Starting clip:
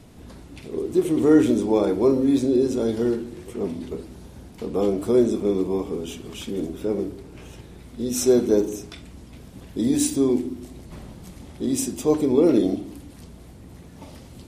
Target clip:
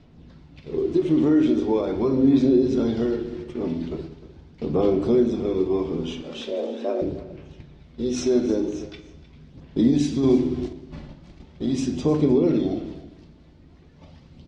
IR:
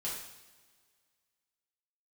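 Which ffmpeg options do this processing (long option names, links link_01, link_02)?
-filter_complex "[0:a]alimiter=limit=-14dB:level=0:latency=1:release=200,lowpass=frequency=5300:width=0.5412,lowpass=frequency=5300:width=1.3066,equalizer=frequency=660:width_type=o:width=3:gain=-2.5,agate=range=-9dB:threshold=-39dB:ratio=16:detection=peak,aphaser=in_gain=1:out_gain=1:delay=3.5:decay=0.33:speed=0.41:type=sinusoidal,asettb=1/sr,asplit=3[link_01][link_02][link_03];[link_01]atrim=end=6.224[link_04];[link_02]atrim=start=6.22:end=7.02,asetpts=PTS-STARTPTS,afade=type=in:duration=0.004:curve=qsin,afade=type=out:start_time=0.796:duration=0.004:curve=qsin,afreqshift=170[link_05];[link_03]atrim=start=7.016[link_06];[link_04][link_05]acrossfade=duration=0.004:curve1=hsin:curve2=qsin[link_07];[link_07][link_06]acrossfade=duration=0.004:curve1=qsin:curve2=hsin,asplit=2[link_08][link_09];[link_09]equalizer=frequency=150:width_type=o:width=0.47:gain=13.5[link_10];[1:a]atrim=start_sample=2205,lowpass=5400[link_11];[link_10][link_11]afir=irnorm=-1:irlink=0,volume=-7.5dB[link_12];[link_08][link_12]amix=inputs=2:normalize=0,asettb=1/sr,asplit=3[link_13][link_14][link_15];[link_13]atrim=end=10.234[link_16];[link_14]atrim=start=10.23:end=10.73,asetpts=PTS-STARTPTS,afade=type=in:duration=0.004:curve=qsin,afade=type=out:start_time=0.496:duration=0.004:curve=qsin,acontrast=37[link_17];[link_15]atrim=start=10.726[link_18];[link_16][link_17]acrossfade=duration=0.004:curve1=hsin:curve2=qsin[link_19];[link_19][link_18]acrossfade=duration=0.004:curve1=qsin:curve2=hsin,aecho=1:1:307:0.141"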